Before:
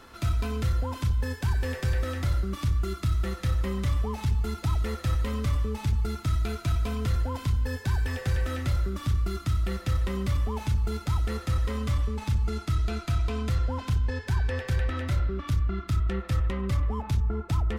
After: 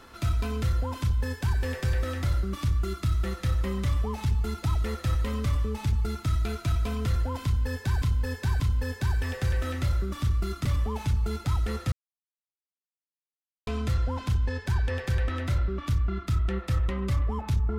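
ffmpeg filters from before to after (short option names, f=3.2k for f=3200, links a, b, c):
-filter_complex "[0:a]asplit=6[a][b][c][d][e][f];[a]atrim=end=8.022[g];[b]atrim=start=7.438:end=8.022[h];[c]atrim=start=7.438:end=9.492[i];[d]atrim=start=10.258:end=11.53,asetpts=PTS-STARTPTS,afade=t=out:st=1.268:d=0.004:c=hsin[j];[e]atrim=start=11.53:end=13.28,asetpts=PTS-STARTPTS,volume=0[k];[f]atrim=start=13.28,asetpts=PTS-STARTPTS,afade=t=in:d=0.004:c=hsin[l];[g][h]acrossfade=d=0.004:c1=hsin:c2=hsin[m];[m][i]acrossfade=d=0.004:c1=hsin:c2=hsin[n];[j][k][l]concat=n=3:v=0:a=1[o];[n][o]acrossfade=d=0.004:c1=hsin:c2=hsin"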